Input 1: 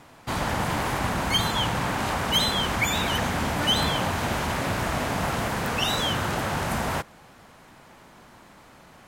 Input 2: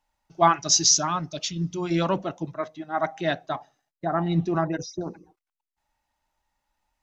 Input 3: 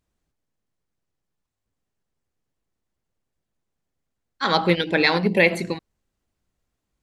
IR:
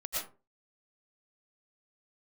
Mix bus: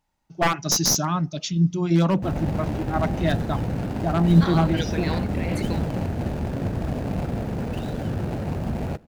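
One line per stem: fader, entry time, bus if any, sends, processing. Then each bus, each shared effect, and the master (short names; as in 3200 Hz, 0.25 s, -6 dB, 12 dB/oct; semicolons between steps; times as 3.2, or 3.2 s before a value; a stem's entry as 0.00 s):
-1.0 dB, 1.95 s, no send, median filter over 41 samples; low shelf 480 Hz +5.5 dB
-1.0 dB, 0.00 s, no send, one-sided fold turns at -15.5 dBFS; bell 170 Hz +10 dB 1.5 oct
-7.5 dB, 0.00 s, no send, negative-ratio compressor -23 dBFS, ratio -1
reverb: off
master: dry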